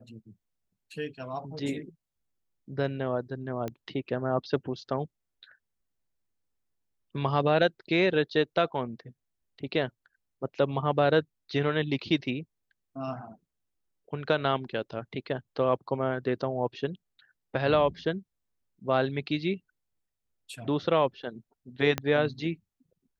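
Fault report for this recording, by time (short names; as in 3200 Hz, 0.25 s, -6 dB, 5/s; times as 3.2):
3.68 pop -21 dBFS
21.98 pop -13 dBFS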